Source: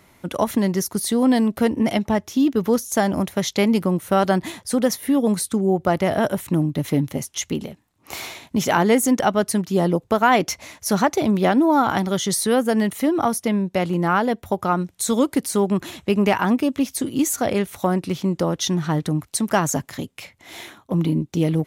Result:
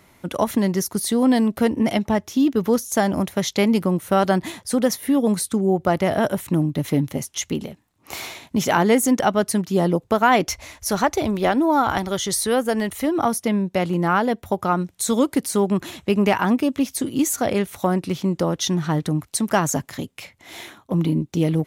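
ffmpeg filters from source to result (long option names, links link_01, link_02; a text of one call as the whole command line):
ffmpeg -i in.wav -filter_complex "[0:a]asplit=3[link_01][link_02][link_03];[link_01]afade=type=out:start_time=10.46:duration=0.02[link_04];[link_02]asubboost=boost=10.5:cutoff=51,afade=type=in:start_time=10.46:duration=0.02,afade=type=out:start_time=13.14:duration=0.02[link_05];[link_03]afade=type=in:start_time=13.14:duration=0.02[link_06];[link_04][link_05][link_06]amix=inputs=3:normalize=0" out.wav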